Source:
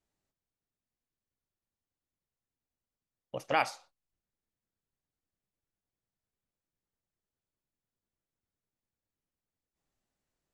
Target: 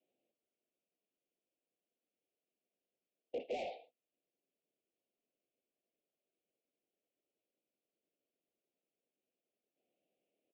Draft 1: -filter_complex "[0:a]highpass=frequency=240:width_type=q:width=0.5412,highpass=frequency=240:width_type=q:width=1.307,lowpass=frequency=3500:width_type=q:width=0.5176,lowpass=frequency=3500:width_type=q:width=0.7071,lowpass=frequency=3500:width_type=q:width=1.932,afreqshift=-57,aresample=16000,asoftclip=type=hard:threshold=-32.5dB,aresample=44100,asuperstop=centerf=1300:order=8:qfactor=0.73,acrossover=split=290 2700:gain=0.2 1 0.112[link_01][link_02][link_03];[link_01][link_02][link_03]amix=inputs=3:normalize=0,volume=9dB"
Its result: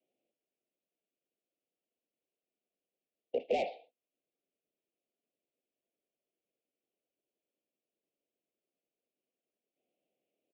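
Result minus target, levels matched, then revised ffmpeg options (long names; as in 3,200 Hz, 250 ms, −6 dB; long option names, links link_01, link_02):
hard clipping: distortion −4 dB
-filter_complex "[0:a]highpass=frequency=240:width_type=q:width=0.5412,highpass=frequency=240:width_type=q:width=1.307,lowpass=frequency=3500:width_type=q:width=0.5176,lowpass=frequency=3500:width_type=q:width=0.7071,lowpass=frequency=3500:width_type=q:width=1.932,afreqshift=-57,aresample=16000,asoftclip=type=hard:threshold=-42.5dB,aresample=44100,asuperstop=centerf=1300:order=8:qfactor=0.73,acrossover=split=290 2700:gain=0.2 1 0.112[link_01][link_02][link_03];[link_01][link_02][link_03]amix=inputs=3:normalize=0,volume=9dB"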